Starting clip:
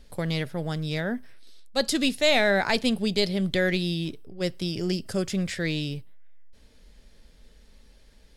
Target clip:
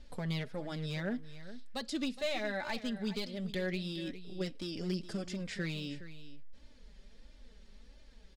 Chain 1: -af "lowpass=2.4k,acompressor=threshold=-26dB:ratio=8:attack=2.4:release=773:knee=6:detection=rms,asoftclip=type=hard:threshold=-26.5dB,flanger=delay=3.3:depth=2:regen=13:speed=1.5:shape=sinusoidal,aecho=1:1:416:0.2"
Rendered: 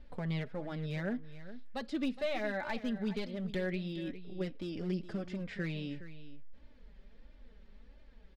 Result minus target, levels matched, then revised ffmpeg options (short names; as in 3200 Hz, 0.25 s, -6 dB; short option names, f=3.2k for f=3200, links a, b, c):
8000 Hz band -11.5 dB
-af "lowpass=6.8k,acompressor=threshold=-26dB:ratio=8:attack=2.4:release=773:knee=6:detection=rms,asoftclip=type=hard:threshold=-26.5dB,flanger=delay=3.3:depth=2:regen=13:speed=1.5:shape=sinusoidal,aecho=1:1:416:0.2"